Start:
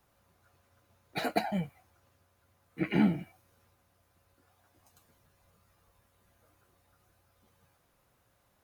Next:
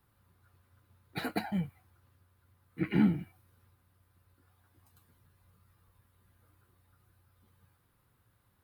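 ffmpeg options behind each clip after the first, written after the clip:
-af "equalizer=f=100:t=o:w=0.67:g=7,equalizer=f=630:t=o:w=0.67:g=-11,equalizer=f=2.5k:t=o:w=0.67:g=-4,equalizer=f=6.3k:t=o:w=0.67:g=-11"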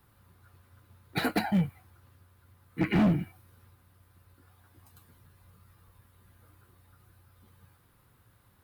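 -af "asoftclip=type=hard:threshold=-27.5dB,volume=7.5dB"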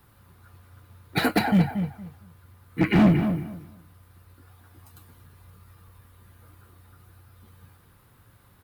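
-filter_complex "[0:a]asplit=2[a][b];[b]adelay=231,lowpass=f=2.4k:p=1,volume=-8dB,asplit=2[c][d];[d]adelay=231,lowpass=f=2.4k:p=1,volume=0.21,asplit=2[e][f];[f]adelay=231,lowpass=f=2.4k:p=1,volume=0.21[g];[a][c][e][g]amix=inputs=4:normalize=0,volume=6dB"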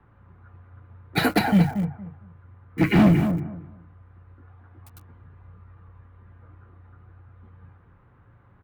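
-filter_complex "[0:a]acrossover=split=180|2200[a][b][c];[a]asplit=2[d][e];[e]adelay=35,volume=-5.5dB[f];[d][f]amix=inputs=2:normalize=0[g];[c]acrusher=bits=7:mix=0:aa=0.000001[h];[g][b][h]amix=inputs=3:normalize=0,volume=1.5dB"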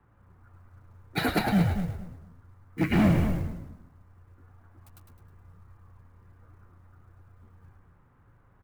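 -filter_complex "[0:a]acrusher=bits=8:mode=log:mix=0:aa=0.000001,asplit=6[a][b][c][d][e][f];[b]adelay=105,afreqshift=-86,volume=-5.5dB[g];[c]adelay=210,afreqshift=-172,volume=-13dB[h];[d]adelay=315,afreqshift=-258,volume=-20.6dB[i];[e]adelay=420,afreqshift=-344,volume=-28.1dB[j];[f]adelay=525,afreqshift=-430,volume=-35.6dB[k];[a][g][h][i][j][k]amix=inputs=6:normalize=0,volume=-6dB"

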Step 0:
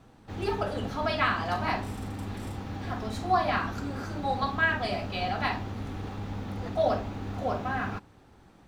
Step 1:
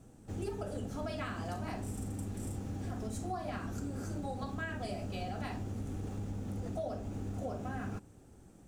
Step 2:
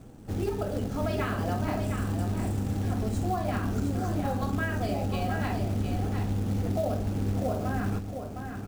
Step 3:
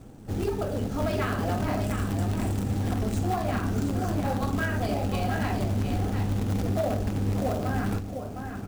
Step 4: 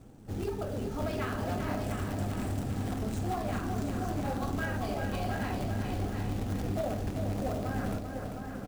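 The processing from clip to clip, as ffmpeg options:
-af "equalizer=f=1k:t=o:w=1:g=-10,equalizer=f=2k:t=o:w=1:g=-7,equalizer=f=4k:t=o:w=1:g=-11,equalizer=f=8k:t=o:w=1:g=10,acompressor=threshold=-35dB:ratio=6"
-af "aemphasis=mode=reproduction:type=50kf,acrusher=bits=5:mode=log:mix=0:aa=0.000001,aecho=1:1:710:0.473,volume=8.5dB"
-filter_complex "[0:a]asplit=2[a][b];[b]acrusher=bits=3:mix=0:aa=0.000001,volume=-11dB[c];[a][c]amix=inputs=2:normalize=0,flanger=delay=2:depth=7.6:regen=-66:speed=2:shape=triangular,asoftclip=type=hard:threshold=-26dB,volume=6dB"
-af "aecho=1:1:393|786|1179|1572|1965|2358:0.447|0.232|0.121|0.0628|0.0327|0.017,volume=-6dB"

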